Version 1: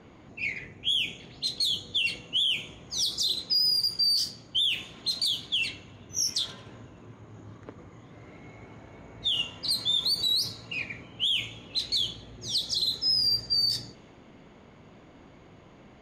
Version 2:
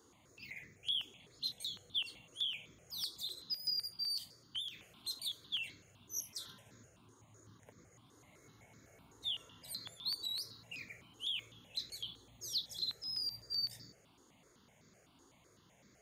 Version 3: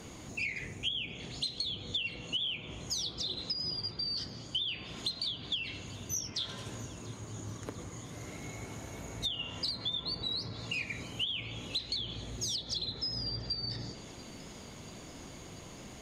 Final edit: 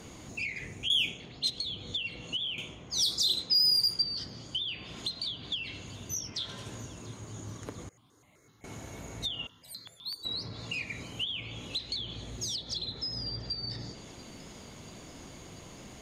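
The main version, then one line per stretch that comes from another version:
3
0:00.90–0:01.50: punch in from 1
0:02.58–0:04.02: punch in from 1
0:07.89–0:08.64: punch in from 2
0:09.47–0:10.25: punch in from 2

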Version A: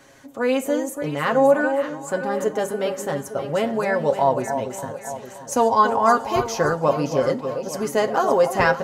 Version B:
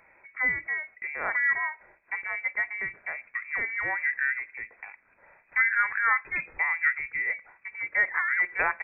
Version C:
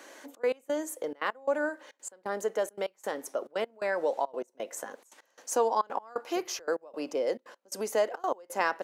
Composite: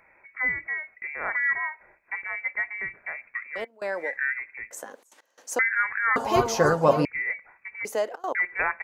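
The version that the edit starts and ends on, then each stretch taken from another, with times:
B
0:03.56–0:04.07: punch in from C, crossfade 0.24 s
0:04.71–0:05.59: punch in from C
0:06.16–0:07.05: punch in from A
0:07.85–0:08.35: punch in from C

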